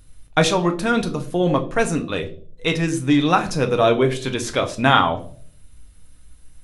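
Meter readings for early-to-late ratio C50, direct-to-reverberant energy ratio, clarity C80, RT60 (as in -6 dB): 14.5 dB, 5.0 dB, 18.5 dB, 0.50 s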